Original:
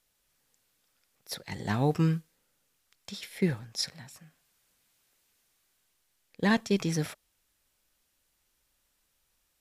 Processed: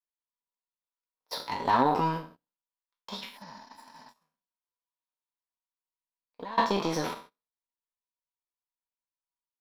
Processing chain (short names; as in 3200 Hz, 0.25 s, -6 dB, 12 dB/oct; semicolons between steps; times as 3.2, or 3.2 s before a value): spectral trails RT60 0.55 s; flange 0.26 Hz, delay 4.2 ms, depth 3.5 ms, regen -27%; limiter -25.5 dBFS, peak gain reduction 8 dB; small resonant body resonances 250/970 Hz, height 13 dB, ringing for 55 ms; 3.29–6.58 compressor 20:1, threshold -38 dBFS, peak gain reduction 13.5 dB; 3.4–4.04 spectral repair 220–7100 Hz after; power-law curve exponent 1.4; ten-band EQ 125 Hz -12 dB, 250 Hz -5 dB, 500 Hz +5 dB, 1000 Hz +12 dB, 2000 Hz -3 dB, 4000 Hz +7 dB, 8000 Hz -12 dB; gate -56 dBFS, range -19 dB; gain +7 dB